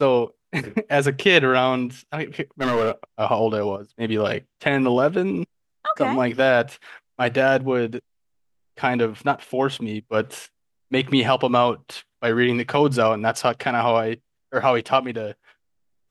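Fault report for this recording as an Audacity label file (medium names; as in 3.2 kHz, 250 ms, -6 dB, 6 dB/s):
2.610000	2.910000	clipped -16 dBFS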